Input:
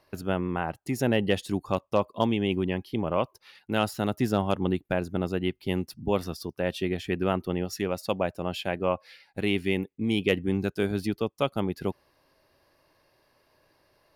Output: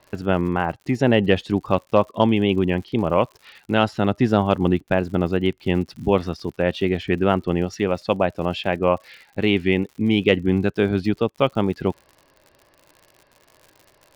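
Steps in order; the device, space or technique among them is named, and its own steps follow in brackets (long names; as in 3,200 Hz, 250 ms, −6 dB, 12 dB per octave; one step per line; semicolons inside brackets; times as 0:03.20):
lo-fi chain (low-pass filter 3,700 Hz 12 dB per octave; tape wow and flutter; surface crackle 96 per second −44 dBFS)
level +7.5 dB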